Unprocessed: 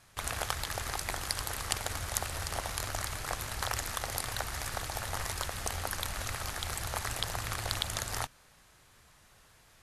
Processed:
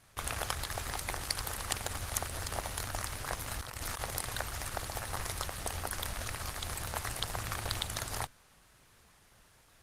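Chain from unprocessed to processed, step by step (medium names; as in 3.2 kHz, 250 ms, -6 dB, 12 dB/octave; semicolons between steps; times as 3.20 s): 3.46–4.04 s: compressor with a negative ratio -37 dBFS, ratio -0.5; Opus 20 kbps 48 kHz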